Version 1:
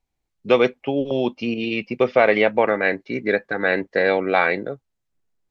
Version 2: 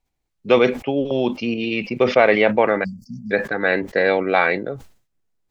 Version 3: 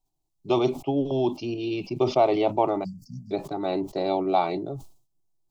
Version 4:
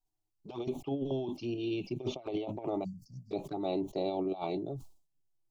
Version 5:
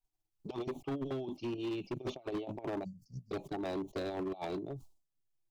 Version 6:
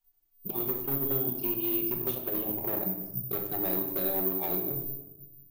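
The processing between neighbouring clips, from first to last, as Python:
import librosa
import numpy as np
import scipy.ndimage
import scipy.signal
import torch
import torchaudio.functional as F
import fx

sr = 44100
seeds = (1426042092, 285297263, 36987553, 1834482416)

y1 = fx.spec_erase(x, sr, start_s=2.84, length_s=0.47, low_hz=250.0, high_hz=4500.0)
y1 = fx.sustainer(y1, sr, db_per_s=130.0)
y1 = F.gain(torch.from_numpy(y1), 1.0).numpy()
y2 = fx.peak_eq(y1, sr, hz=2000.0, db=-13.0, octaves=1.1)
y2 = fx.fixed_phaser(y2, sr, hz=330.0, stages=8)
y3 = fx.over_compress(y2, sr, threshold_db=-25.0, ratio=-0.5)
y3 = fx.env_flanger(y3, sr, rest_ms=9.6, full_db=-25.5)
y3 = F.gain(torch.from_numpy(y3), -7.0).numpy()
y4 = fx.transient(y3, sr, attack_db=9, sustain_db=-4)
y4 = np.clip(y4, -10.0 ** (-30.0 / 20.0), 10.0 ** (-30.0 / 20.0))
y4 = F.gain(torch.from_numpy(y4), -3.0).numpy()
y5 = fx.room_shoebox(y4, sr, seeds[0], volume_m3=400.0, walls='mixed', distance_m=1.1)
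y5 = (np.kron(y5[::3], np.eye(3)[0]) * 3)[:len(y5)]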